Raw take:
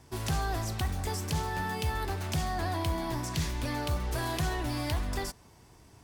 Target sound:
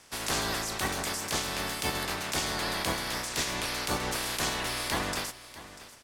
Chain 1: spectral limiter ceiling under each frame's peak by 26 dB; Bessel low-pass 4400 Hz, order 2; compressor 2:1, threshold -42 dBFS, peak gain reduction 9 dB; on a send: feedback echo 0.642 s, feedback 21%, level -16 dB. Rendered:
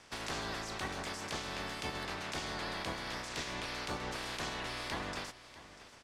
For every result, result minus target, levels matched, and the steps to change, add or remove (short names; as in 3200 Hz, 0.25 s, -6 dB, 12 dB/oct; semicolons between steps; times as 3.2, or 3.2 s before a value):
compressor: peak gain reduction +9 dB; 8000 Hz band -5.0 dB
remove: compressor 2:1, threshold -42 dBFS, peak gain reduction 9 dB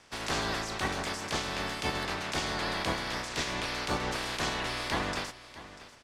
8000 Hz band -5.5 dB
change: Bessel low-pass 12000 Hz, order 2